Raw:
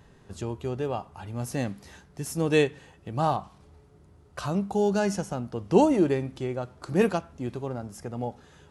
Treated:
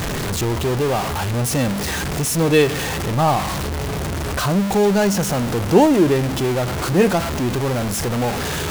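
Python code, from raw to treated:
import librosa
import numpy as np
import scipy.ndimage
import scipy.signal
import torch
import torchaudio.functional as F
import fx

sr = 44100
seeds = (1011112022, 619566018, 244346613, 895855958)

y = x + 0.5 * 10.0 ** (-23.0 / 20.0) * np.sign(x)
y = y * 10.0 ** (5.0 / 20.0)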